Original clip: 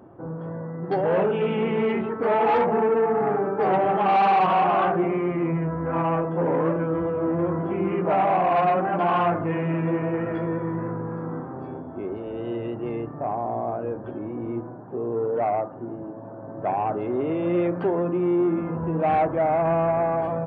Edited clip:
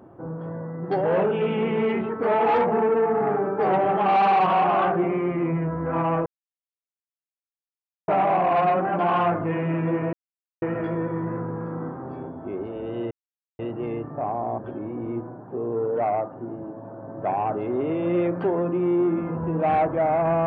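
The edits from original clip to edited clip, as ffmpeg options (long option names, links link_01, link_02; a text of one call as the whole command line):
ffmpeg -i in.wav -filter_complex "[0:a]asplit=6[link_01][link_02][link_03][link_04][link_05][link_06];[link_01]atrim=end=6.26,asetpts=PTS-STARTPTS,afade=type=out:start_time=6.256:duration=0.004:curve=hsin[link_07];[link_02]atrim=start=6.26:end=8.08,asetpts=PTS-STARTPTS,volume=0[link_08];[link_03]atrim=start=8.08:end=10.13,asetpts=PTS-STARTPTS,afade=type=in:duration=0.004:curve=hsin,afade=type=out:start_time=2.046:duration=0.004:curve=hsin,apad=pad_dur=0.49[link_09];[link_04]atrim=start=10.13:end=12.62,asetpts=PTS-STARTPTS,afade=type=in:duration=0.004:curve=hsin,afade=type=out:start_time=2.486:duration=0.004:curve=hsin,apad=pad_dur=0.48[link_10];[link_05]atrim=start=12.62:end=13.612,asetpts=PTS-STARTPTS,afade=type=in:duration=0.004:curve=hsin[link_11];[link_06]atrim=start=13.978[link_12];[link_07][link_08][link_09][link_10][link_11]concat=n=5:v=0:a=1[link_13];[link_13][link_12]acrossfade=duration=0.004:curve1=hsin:curve2=hsin" out.wav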